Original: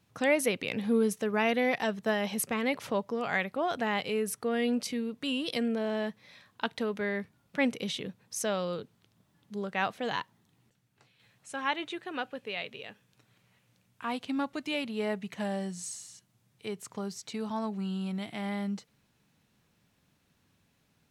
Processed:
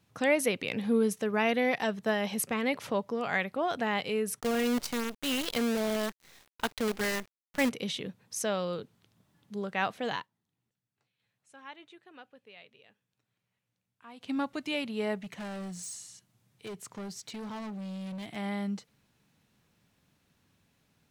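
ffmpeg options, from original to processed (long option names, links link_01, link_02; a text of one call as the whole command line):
ffmpeg -i in.wav -filter_complex "[0:a]asplit=3[link_01][link_02][link_03];[link_01]afade=type=out:start_time=4.39:duration=0.02[link_04];[link_02]acrusher=bits=6:dc=4:mix=0:aa=0.000001,afade=type=in:start_time=4.39:duration=0.02,afade=type=out:start_time=7.68:duration=0.02[link_05];[link_03]afade=type=in:start_time=7.68:duration=0.02[link_06];[link_04][link_05][link_06]amix=inputs=3:normalize=0,asettb=1/sr,asplit=3[link_07][link_08][link_09];[link_07]atrim=end=15.164[link_10];[link_08]atrim=start=15.16:end=18.36,asetpts=PTS-STARTPTS,afade=type=in:duration=0.004:curve=qsin,afade=type=out:start_time=3.196:duration=0.004:curve=qsin,asoftclip=type=hard:threshold=-37dB[link_11];[link_09]atrim=start=18.356[link_12];[link_10][link_11]acrossfade=duration=0.004:curve1=hsin:curve2=qsin[link_13];[link_13][link_12]acrossfade=duration=0.004:curve1=qsin:curve2=hsin,asplit=3[link_14][link_15][link_16];[link_14]atrim=end=10.28,asetpts=PTS-STARTPTS,afade=type=out:start_time=10.12:duration=0.16:silence=0.158489[link_17];[link_15]atrim=start=10.28:end=14.16,asetpts=PTS-STARTPTS,volume=-16dB[link_18];[link_16]atrim=start=14.16,asetpts=PTS-STARTPTS,afade=type=in:duration=0.16:silence=0.158489[link_19];[link_17][link_18][link_19]concat=n=3:v=0:a=1" out.wav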